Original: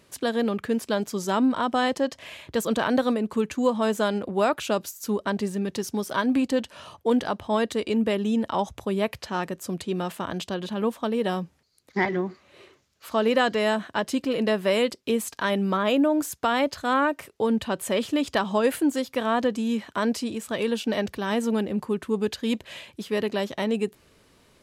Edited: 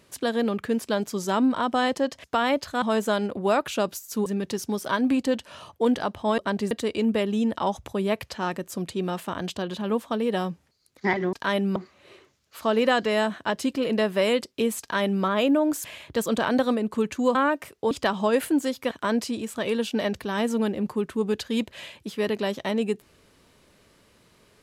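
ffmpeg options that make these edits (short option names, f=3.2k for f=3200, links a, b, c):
-filter_complex "[0:a]asplit=12[a][b][c][d][e][f][g][h][i][j][k][l];[a]atrim=end=2.242[m];[b]atrim=start=16.338:end=16.922[n];[c]atrim=start=3.738:end=5.182[o];[d]atrim=start=5.508:end=7.632[p];[e]atrim=start=5.178:end=5.512[q];[f]atrim=start=7.628:end=12.252[r];[g]atrim=start=15.298:end=15.732[s];[h]atrim=start=12.248:end=16.342[t];[i]atrim=start=2.238:end=3.742[u];[j]atrim=start=16.918:end=17.482[v];[k]atrim=start=18.218:end=19.222[w];[l]atrim=start=19.838[x];[m][n]acrossfade=d=0.004:c1=hsin:c2=hsin[y];[y][o]acrossfade=d=0.004:c1=hsin:c2=hsin[z];[z][p]acrossfade=d=0.004:c1=hsin:c2=hsin[aa];[aa][q]acrossfade=d=0.004:c1=hsin:c2=hsin[ab];[ab][r]acrossfade=d=0.004:c1=hsin:c2=hsin[ac];[ac][s]acrossfade=d=0.004:c1=hsin:c2=hsin[ad];[ad][t]acrossfade=d=0.004:c1=hsin:c2=hsin[ae];[ae][u]acrossfade=d=0.004:c1=hsin:c2=hsin[af];[af][v]acrossfade=d=0.004:c1=hsin:c2=hsin[ag];[ag][w]acrossfade=d=0.004:c1=hsin:c2=hsin[ah];[ah][x]acrossfade=d=0.004:c1=hsin:c2=hsin"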